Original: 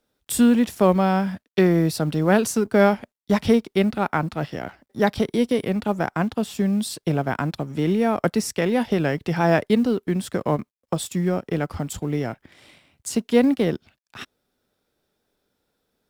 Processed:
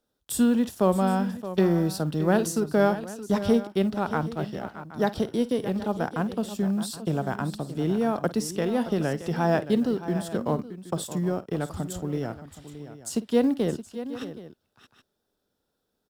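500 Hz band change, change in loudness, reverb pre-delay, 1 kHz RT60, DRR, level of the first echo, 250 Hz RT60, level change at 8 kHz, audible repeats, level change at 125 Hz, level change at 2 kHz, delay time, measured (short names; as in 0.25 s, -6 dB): -4.0 dB, -4.5 dB, none, none, none, -17.0 dB, none, -4.0 dB, 3, -4.0 dB, -7.0 dB, 52 ms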